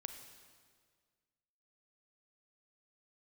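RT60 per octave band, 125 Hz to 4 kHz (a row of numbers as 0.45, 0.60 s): 2.0, 1.9, 1.9, 1.7, 1.6, 1.6 s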